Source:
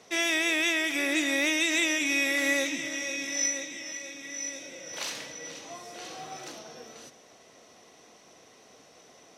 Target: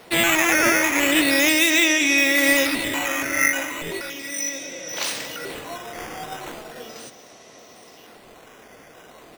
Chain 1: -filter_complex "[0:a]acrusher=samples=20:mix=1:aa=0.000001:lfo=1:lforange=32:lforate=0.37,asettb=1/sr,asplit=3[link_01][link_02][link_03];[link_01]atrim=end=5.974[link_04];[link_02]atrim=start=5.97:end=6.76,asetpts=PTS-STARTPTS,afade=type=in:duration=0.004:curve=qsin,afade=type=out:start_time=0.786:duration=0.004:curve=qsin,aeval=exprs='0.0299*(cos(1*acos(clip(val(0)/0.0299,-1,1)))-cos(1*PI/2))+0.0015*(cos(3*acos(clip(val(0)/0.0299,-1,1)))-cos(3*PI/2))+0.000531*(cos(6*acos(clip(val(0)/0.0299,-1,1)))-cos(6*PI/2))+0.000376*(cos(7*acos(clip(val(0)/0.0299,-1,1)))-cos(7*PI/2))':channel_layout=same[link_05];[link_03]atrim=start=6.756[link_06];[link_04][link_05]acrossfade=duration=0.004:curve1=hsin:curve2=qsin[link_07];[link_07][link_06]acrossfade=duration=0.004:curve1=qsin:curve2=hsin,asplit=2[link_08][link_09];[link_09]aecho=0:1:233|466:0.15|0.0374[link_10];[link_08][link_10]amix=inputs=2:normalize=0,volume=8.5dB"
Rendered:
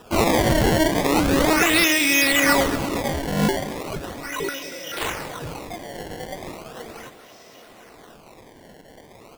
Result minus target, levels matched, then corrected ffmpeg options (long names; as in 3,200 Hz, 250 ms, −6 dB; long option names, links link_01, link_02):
sample-and-hold swept by an LFO: distortion +8 dB
-filter_complex "[0:a]acrusher=samples=6:mix=1:aa=0.000001:lfo=1:lforange=9.6:lforate=0.37,asettb=1/sr,asplit=3[link_01][link_02][link_03];[link_01]atrim=end=5.974[link_04];[link_02]atrim=start=5.97:end=6.76,asetpts=PTS-STARTPTS,afade=type=in:duration=0.004:curve=qsin,afade=type=out:start_time=0.786:duration=0.004:curve=qsin,aeval=exprs='0.0299*(cos(1*acos(clip(val(0)/0.0299,-1,1)))-cos(1*PI/2))+0.0015*(cos(3*acos(clip(val(0)/0.0299,-1,1)))-cos(3*PI/2))+0.000531*(cos(6*acos(clip(val(0)/0.0299,-1,1)))-cos(6*PI/2))+0.000376*(cos(7*acos(clip(val(0)/0.0299,-1,1)))-cos(7*PI/2))':channel_layout=same[link_05];[link_03]atrim=start=6.756[link_06];[link_04][link_05]acrossfade=duration=0.004:curve1=hsin:curve2=qsin[link_07];[link_07][link_06]acrossfade=duration=0.004:curve1=qsin:curve2=hsin,asplit=2[link_08][link_09];[link_09]aecho=0:1:233|466:0.15|0.0374[link_10];[link_08][link_10]amix=inputs=2:normalize=0,volume=8.5dB"